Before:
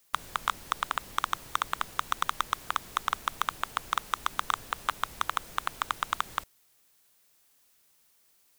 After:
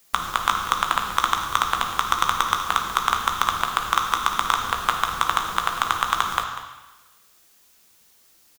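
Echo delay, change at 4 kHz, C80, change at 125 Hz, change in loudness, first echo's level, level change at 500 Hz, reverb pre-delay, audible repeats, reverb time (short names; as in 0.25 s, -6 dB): 0.194 s, +10.0 dB, 6.5 dB, +11.0 dB, +9.5 dB, -13.5 dB, +10.0 dB, 3 ms, 1, 1.1 s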